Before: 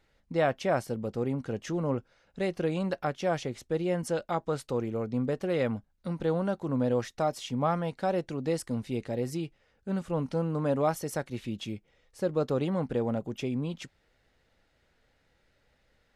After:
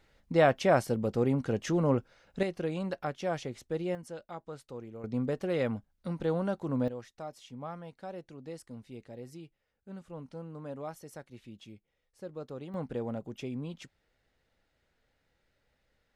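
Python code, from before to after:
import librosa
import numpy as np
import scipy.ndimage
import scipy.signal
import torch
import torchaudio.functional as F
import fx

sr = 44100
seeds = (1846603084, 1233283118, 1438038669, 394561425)

y = fx.gain(x, sr, db=fx.steps((0.0, 3.0), (2.43, -4.0), (3.95, -12.5), (5.04, -2.0), (6.88, -13.5), (12.74, -6.0)))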